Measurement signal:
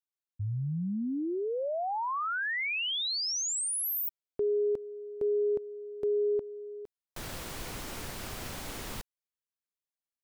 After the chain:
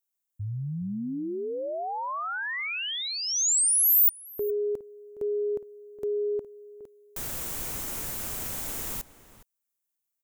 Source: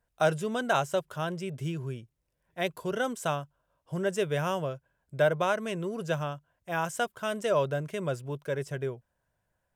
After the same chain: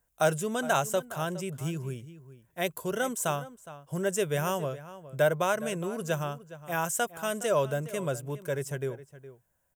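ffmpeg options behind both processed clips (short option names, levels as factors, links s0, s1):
-filter_complex "[0:a]aexciter=amount=3.9:drive=2.8:freq=6300,asplit=2[s0][s1];[s1]adelay=414,volume=0.178,highshelf=f=4000:g=-9.32[s2];[s0][s2]amix=inputs=2:normalize=0"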